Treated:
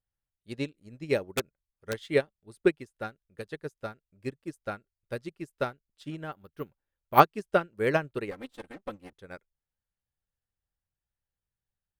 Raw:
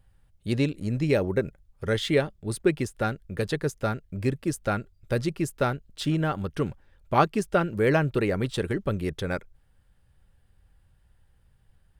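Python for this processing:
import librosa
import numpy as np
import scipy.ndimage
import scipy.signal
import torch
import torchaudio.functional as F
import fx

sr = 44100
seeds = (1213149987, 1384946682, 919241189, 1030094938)

y = fx.lower_of_two(x, sr, delay_ms=3.8, at=(8.31, 9.13))
y = fx.low_shelf(y, sr, hz=190.0, db=-8.0)
y = fx.overflow_wrap(y, sr, gain_db=16.5, at=(1.36, 1.92), fade=0.02)
y = fx.resample_bad(y, sr, factor=3, down='filtered', up='hold', at=(6.32, 7.2))
y = fx.upward_expand(y, sr, threshold_db=-36.0, expansion=2.5)
y = y * 10.0 ** (5.5 / 20.0)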